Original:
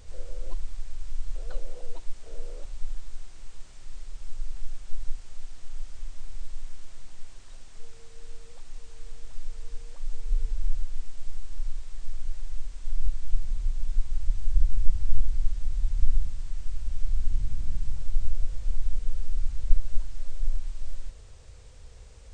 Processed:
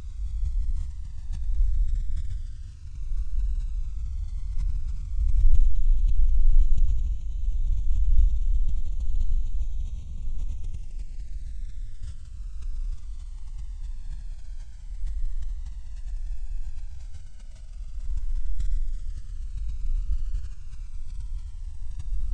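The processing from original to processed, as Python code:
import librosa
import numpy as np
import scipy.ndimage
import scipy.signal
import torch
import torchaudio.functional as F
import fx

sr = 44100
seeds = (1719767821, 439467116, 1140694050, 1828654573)

y = fx.env_flanger(x, sr, rest_ms=3.4, full_db=-13.5)
y = fx.paulstretch(y, sr, seeds[0], factor=20.0, window_s=0.05, from_s=15.76)
y = fx.sustainer(y, sr, db_per_s=65.0)
y = y * 10.0 ** (-4.5 / 20.0)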